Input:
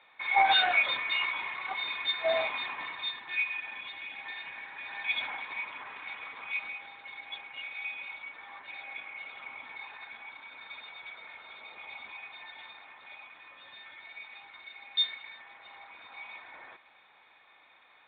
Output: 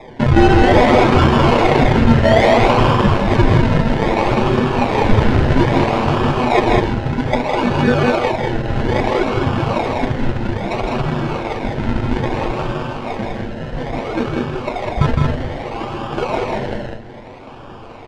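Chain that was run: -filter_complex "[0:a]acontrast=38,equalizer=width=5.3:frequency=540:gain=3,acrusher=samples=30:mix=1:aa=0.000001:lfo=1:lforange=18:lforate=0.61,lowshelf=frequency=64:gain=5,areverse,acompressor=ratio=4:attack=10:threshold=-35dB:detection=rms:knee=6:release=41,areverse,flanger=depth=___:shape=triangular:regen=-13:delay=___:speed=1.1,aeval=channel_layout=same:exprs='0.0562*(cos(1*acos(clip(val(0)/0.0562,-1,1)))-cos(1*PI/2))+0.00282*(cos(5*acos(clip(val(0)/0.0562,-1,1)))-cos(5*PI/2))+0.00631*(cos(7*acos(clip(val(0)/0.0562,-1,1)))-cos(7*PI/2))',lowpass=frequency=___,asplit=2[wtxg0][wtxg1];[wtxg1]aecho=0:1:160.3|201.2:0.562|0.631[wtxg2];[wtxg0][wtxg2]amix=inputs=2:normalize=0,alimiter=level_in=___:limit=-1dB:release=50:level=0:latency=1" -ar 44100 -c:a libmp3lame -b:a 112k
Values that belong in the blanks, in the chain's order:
1.5, 7.7, 3000, 27dB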